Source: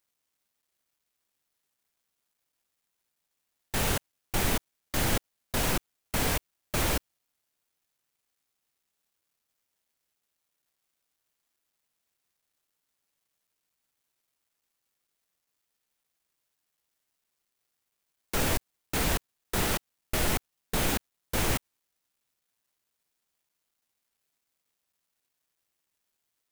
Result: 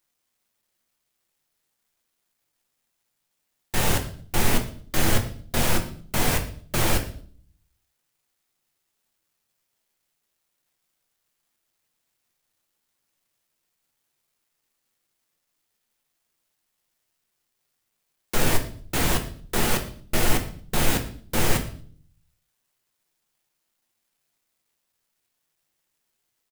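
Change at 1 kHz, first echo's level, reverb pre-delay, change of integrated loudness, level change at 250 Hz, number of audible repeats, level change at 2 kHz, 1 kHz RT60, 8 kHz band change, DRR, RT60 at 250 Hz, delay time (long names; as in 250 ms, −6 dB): +4.5 dB, −20.5 dB, 5 ms, +4.5 dB, +5.5 dB, 2, +4.5 dB, 0.45 s, +4.5 dB, 4.0 dB, 0.75 s, 115 ms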